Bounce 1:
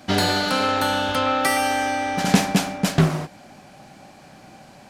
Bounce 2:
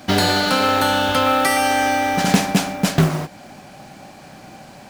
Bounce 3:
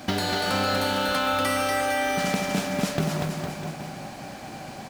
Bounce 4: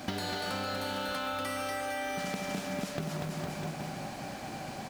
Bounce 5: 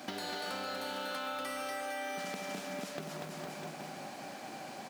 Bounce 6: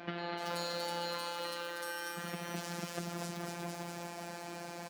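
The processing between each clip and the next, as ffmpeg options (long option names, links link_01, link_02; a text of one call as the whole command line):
ffmpeg -i in.wav -filter_complex "[0:a]asplit=2[link_01][link_02];[link_02]alimiter=limit=-13dB:level=0:latency=1:release=436,volume=3dB[link_03];[link_01][link_03]amix=inputs=2:normalize=0,acrusher=bits=5:mode=log:mix=0:aa=0.000001,volume=-2.5dB" out.wav
ffmpeg -i in.wav -filter_complex "[0:a]acompressor=threshold=-24dB:ratio=6,asplit=2[link_01][link_02];[link_02]aecho=0:1:240|456|650.4|825.4|982.8:0.631|0.398|0.251|0.158|0.1[link_03];[link_01][link_03]amix=inputs=2:normalize=0" out.wav
ffmpeg -i in.wav -af "acompressor=threshold=-30dB:ratio=6,volume=-2dB" out.wav
ffmpeg -i in.wav -af "highpass=240,volume=-3.5dB" out.wav
ffmpeg -i in.wav -filter_complex "[0:a]acrossover=split=3300[link_01][link_02];[link_02]adelay=380[link_03];[link_01][link_03]amix=inputs=2:normalize=0,afftfilt=real='hypot(re,im)*cos(PI*b)':imag='0':win_size=1024:overlap=0.75,volume=5.5dB" out.wav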